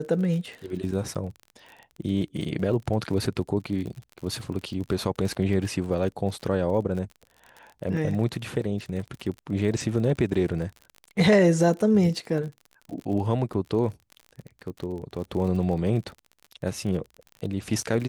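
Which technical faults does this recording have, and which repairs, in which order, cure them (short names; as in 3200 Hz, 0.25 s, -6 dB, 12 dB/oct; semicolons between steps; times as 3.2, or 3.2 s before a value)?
crackle 39/s -34 dBFS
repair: de-click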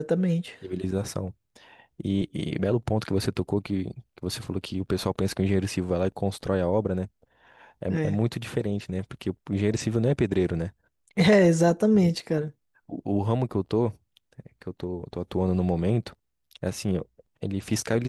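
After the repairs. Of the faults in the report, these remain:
none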